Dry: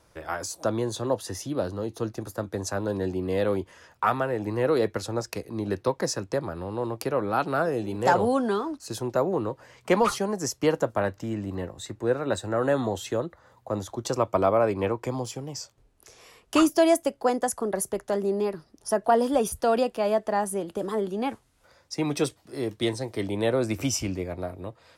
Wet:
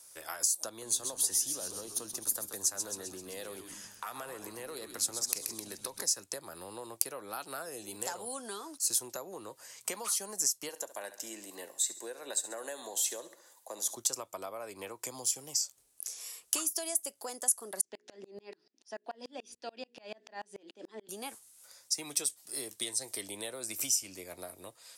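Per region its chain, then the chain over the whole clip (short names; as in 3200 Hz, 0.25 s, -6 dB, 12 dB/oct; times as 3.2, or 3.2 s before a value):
0.69–6.11 compressor 2.5:1, threshold -28 dBFS + frequency-shifting echo 0.13 s, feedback 58%, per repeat -100 Hz, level -9 dB
10.69–13.94 HPF 330 Hz + notch 1300 Hz, Q 5.4 + feedback echo 68 ms, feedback 43%, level -15.5 dB
17.81–21.09 speaker cabinet 130–4600 Hz, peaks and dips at 160 Hz -7 dB, 240 Hz +8 dB, 330 Hz +6 dB, 1200 Hz -8 dB, 1800 Hz +4 dB, 2500 Hz +5 dB + notches 60/120/180/240/300/360/420/480 Hz + dB-ramp tremolo swelling 6.9 Hz, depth 33 dB
whole clip: bell 9100 Hz +13 dB 1.8 oct; compressor 6:1, threshold -29 dBFS; RIAA curve recording; gain -8 dB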